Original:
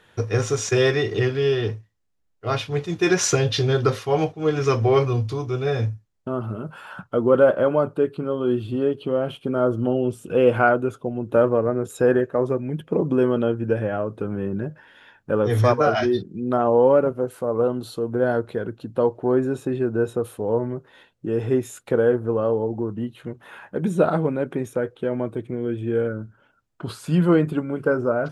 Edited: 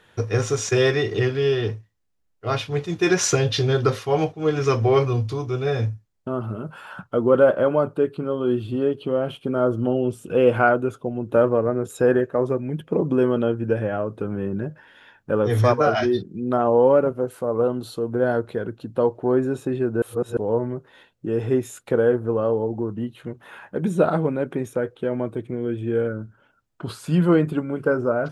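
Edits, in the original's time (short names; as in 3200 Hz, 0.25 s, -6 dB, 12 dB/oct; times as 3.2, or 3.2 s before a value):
20.02–20.37 reverse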